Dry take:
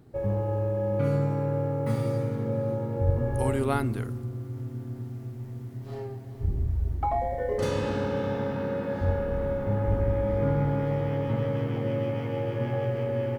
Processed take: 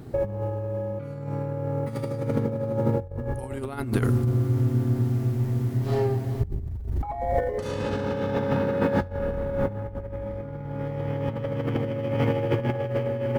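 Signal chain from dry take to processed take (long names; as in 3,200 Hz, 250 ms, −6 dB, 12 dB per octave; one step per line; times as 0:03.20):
compressor whose output falls as the input rises −32 dBFS, ratio −0.5
level +7 dB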